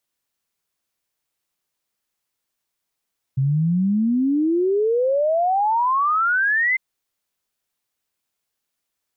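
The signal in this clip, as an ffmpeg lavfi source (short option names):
-f lavfi -i "aevalsrc='0.158*clip(min(t,3.4-t)/0.01,0,1)*sin(2*PI*130*3.4/log(2100/130)*(exp(log(2100/130)*t/3.4)-1))':d=3.4:s=44100"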